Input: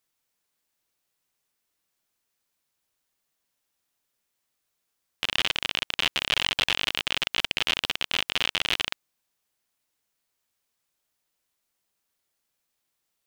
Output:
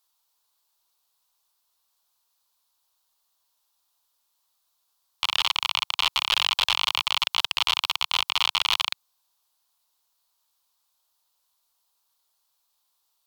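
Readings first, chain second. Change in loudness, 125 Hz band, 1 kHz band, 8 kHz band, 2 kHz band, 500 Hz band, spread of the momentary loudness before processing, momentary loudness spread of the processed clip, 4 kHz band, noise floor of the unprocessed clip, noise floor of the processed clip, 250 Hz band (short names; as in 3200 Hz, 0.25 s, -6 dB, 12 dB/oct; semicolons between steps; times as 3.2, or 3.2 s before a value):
+2.5 dB, n/a, +7.0 dB, +2.5 dB, -1.0 dB, -6.5 dB, 4 LU, 4 LU, +3.5 dB, -80 dBFS, -74 dBFS, under -10 dB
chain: rattling part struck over -48 dBFS, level -11 dBFS; ten-band EQ 125 Hz -10 dB, 250 Hz -10 dB, 500 Hz -3 dB, 1000 Hz +12 dB, 2000 Hz -9 dB, 4000 Hz +9 dB, 16000 Hz +8 dB; limiter -8 dBFS, peak gain reduction 5 dB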